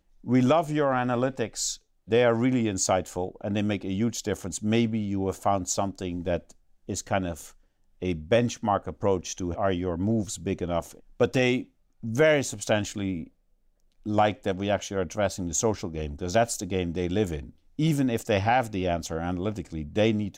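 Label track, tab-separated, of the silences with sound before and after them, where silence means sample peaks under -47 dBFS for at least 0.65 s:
13.280000	14.060000	silence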